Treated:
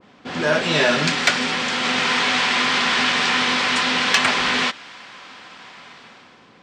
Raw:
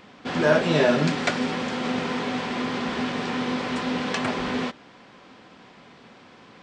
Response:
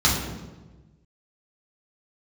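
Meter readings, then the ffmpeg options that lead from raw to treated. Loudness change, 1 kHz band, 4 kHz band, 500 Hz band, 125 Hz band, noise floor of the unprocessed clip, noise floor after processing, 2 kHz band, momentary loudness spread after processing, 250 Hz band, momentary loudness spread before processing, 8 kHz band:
+7.0 dB, +7.0 dB, +13.5 dB, -0.5 dB, -2.0 dB, -50 dBFS, -50 dBFS, +10.5 dB, 4 LU, -1.5 dB, 8 LU, +13.0 dB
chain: -filter_complex "[0:a]acrossover=split=850[s0][s1];[s1]dynaudnorm=f=100:g=13:m=4.47[s2];[s0][s2]amix=inputs=2:normalize=0,asoftclip=type=tanh:threshold=0.562,adynamicequalizer=threshold=0.02:dfrequency=1600:dqfactor=0.7:tfrequency=1600:tqfactor=0.7:attack=5:release=100:ratio=0.375:range=2.5:mode=boostabove:tftype=highshelf,volume=0.841"

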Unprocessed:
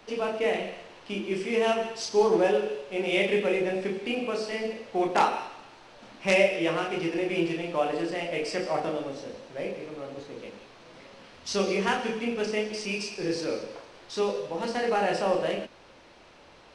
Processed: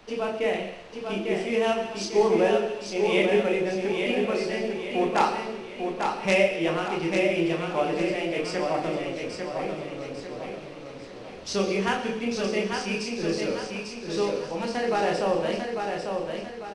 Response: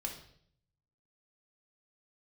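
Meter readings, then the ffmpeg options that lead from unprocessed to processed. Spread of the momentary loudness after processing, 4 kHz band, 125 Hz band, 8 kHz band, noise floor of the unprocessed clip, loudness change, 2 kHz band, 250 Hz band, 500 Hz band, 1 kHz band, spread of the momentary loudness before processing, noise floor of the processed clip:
13 LU, +1.5 dB, +4.0 dB, +1.5 dB, -53 dBFS, +1.5 dB, +1.5 dB, +3.0 dB, +2.0 dB, +1.5 dB, 15 LU, -41 dBFS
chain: -filter_complex "[0:a]lowshelf=f=150:g=6.5,asplit=2[s0][s1];[s1]aecho=0:1:847|1694|2541|3388|4235:0.562|0.242|0.104|0.0447|0.0192[s2];[s0][s2]amix=inputs=2:normalize=0"

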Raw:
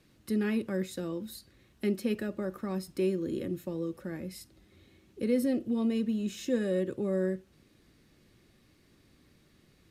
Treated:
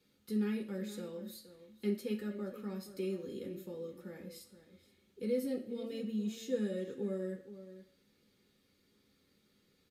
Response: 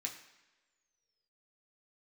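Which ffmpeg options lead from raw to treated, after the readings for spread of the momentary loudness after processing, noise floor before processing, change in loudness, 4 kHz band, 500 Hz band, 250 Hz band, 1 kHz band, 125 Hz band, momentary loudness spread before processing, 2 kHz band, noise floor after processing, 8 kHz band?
16 LU, -64 dBFS, -7.0 dB, -5.5 dB, -6.0 dB, -7.0 dB, -9.5 dB, -7.0 dB, 10 LU, -9.0 dB, -73 dBFS, -6.5 dB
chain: -filter_complex "[0:a]asplit=2[s0][s1];[s1]adelay=472.3,volume=0.224,highshelf=f=4000:g=-10.6[s2];[s0][s2]amix=inputs=2:normalize=0[s3];[1:a]atrim=start_sample=2205,asetrate=79380,aresample=44100[s4];[s3][s4]afir=irnorm=-1:irlink=0"

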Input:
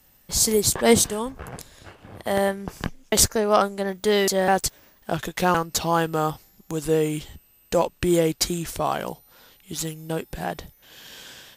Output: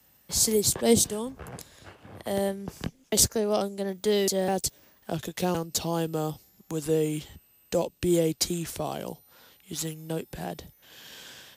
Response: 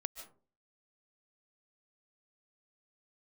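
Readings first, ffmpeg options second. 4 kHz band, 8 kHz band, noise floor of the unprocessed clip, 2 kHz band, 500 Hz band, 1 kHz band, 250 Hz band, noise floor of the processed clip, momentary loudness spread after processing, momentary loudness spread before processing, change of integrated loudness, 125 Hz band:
-4.0 dB, -3.0 dB, -58 dBFS, -11.0 dB, -4.5 dB, -10.5 dB, -3.0 dB, -62 dBFS, 20 LU, 17 LU, -4.5 dB, -3.0 dB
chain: -filter_complex "[0:a]highpass=63,acrossover=split=200|680|2700[s0][s1][s2][s3];[s2]acompressor=threshold=0.00794:ratio=6[s4];[s0][s1][s4][s3]amix=inputs=4:normalize=0,volume=0.708"

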